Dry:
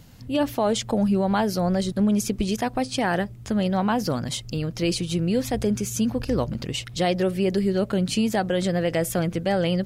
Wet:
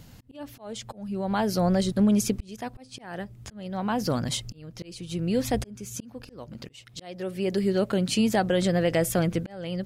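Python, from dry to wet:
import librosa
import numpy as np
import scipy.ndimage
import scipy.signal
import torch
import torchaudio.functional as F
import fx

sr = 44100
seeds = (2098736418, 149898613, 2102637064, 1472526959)

y = fx.low_shelf(x, sr, hz=110.0, db=-9.5, at=(5.95, 8.18), fade=0.02)
y = fx.auto_swell(y, sr, attack_ms=681.0)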